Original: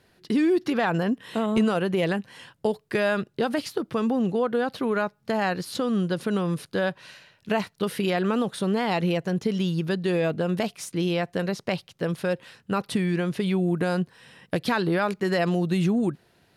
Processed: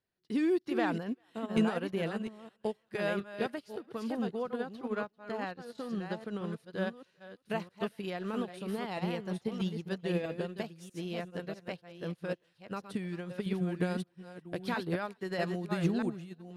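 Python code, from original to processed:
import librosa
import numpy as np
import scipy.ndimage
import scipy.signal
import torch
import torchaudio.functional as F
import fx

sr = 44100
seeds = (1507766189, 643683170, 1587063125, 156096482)

y = fx.reverse_delay(x, sr, ms=641, wet_db=-4.5)
y = fx.high_shelf(y, sr, hz=10000.0, db=-10.5, at=(4.75, 6.53))
y = fx.echo_thinned(y, sr, ms=394, feedback_pct=41, hz=460.0, wet_db=-17.5)
y = fx.upward_expand(y, sr, threshold_db=-33.0, expansion=2.5)
y = F.gain(torch.from_numpy(y), -4.5).numpy()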